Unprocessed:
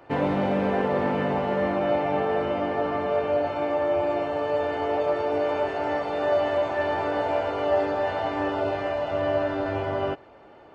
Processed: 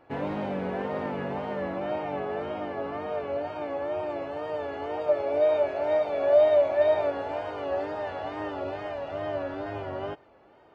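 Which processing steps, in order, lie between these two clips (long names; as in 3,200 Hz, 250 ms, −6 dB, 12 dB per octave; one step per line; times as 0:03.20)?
tape wow and flutter 84 cents
0:05.08–0:07.10: hollow resonant body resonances 610/2,300/3,700 Hz, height 12 dB → 15 dB
level −7 dB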